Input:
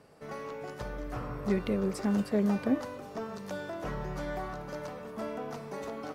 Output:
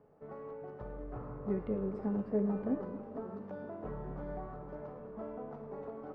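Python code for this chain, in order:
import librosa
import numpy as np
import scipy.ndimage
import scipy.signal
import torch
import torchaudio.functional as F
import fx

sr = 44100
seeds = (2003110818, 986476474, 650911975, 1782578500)

y = scipy.signal.sosfilt(scipy.signal.butter(2, 1000.0, 'lowpass', fs=sr, output='sos'), x)
y = fx.comb_fb(y, sr, f0_hz=430.0, decay_s=0.57, harmonics='all', damping=0.0, mix_pct=80)
y = fx.echo_split(y, sr, split_hz=540.0, low_ms=218, high_ms=108, feedback_pct=52, wet_db=-14.5)
y = fx.echo_warbled(y, sr, ms=454, feedback_pct=68, rate_hz=2.8, cents=196, wet_db=-17.0)
y = y * librosa.db_to_amplitude(7.5)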